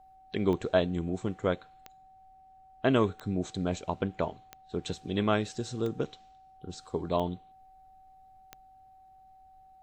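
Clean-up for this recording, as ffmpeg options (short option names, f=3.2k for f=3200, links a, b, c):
-af "adeclick=t=4,bandreject=f=760:w=30,agate=range=-21dB:threshold=-49dB"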